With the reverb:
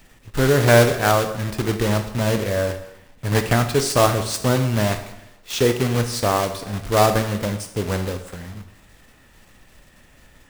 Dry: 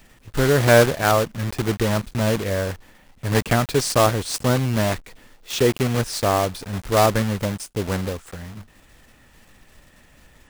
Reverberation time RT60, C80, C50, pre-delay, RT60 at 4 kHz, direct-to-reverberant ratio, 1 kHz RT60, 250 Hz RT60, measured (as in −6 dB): 0.90 s, 12.5 dB, 10.0 dB, 7 ms, 0.80 s, 7.5 dB, 0.90 s, 0.90 s